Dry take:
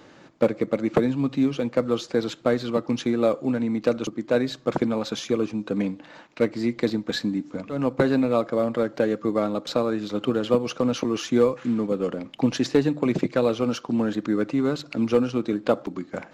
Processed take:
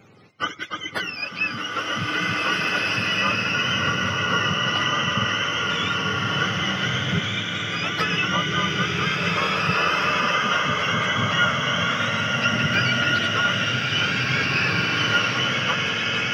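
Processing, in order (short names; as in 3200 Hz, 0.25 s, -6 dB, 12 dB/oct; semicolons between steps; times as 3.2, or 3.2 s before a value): spectrum mirrored in octaves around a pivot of 830 Hz; bloom reverb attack 1.98 s, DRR -5.5 dB; gain -1 dB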